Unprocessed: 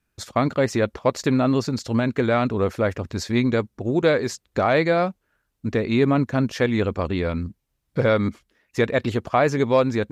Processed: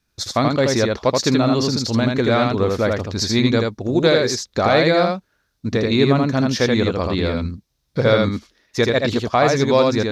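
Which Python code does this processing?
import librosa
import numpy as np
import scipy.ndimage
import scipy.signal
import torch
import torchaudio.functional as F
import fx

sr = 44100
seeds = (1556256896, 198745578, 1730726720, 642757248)

y = fx.band_shelf(x, sr, hz=4700.0, db=8.5, octaves=1.0)
y = y + 10.0 ** (-3.0 / 20.0) * np.pad(y, (int(80 * sr / 1000.0), 0))[:len(y)]
y = F.gain(torch.from_numpy(y), 2.0).numpy()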